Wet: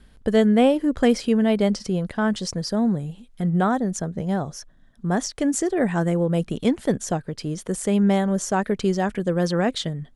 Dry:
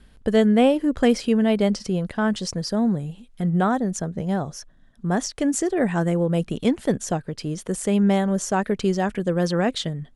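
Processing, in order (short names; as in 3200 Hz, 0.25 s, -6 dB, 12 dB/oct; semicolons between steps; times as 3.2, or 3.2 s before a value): bell 2700 Hz -2.5 dB 0.22 oct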